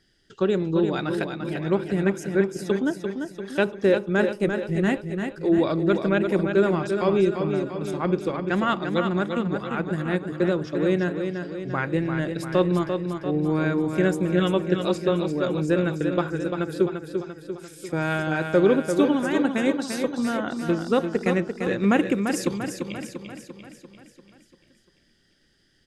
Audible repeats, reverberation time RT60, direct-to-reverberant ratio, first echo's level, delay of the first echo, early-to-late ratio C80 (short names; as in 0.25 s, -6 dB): 6, none, none, -6.5 dB, 0.344 s, none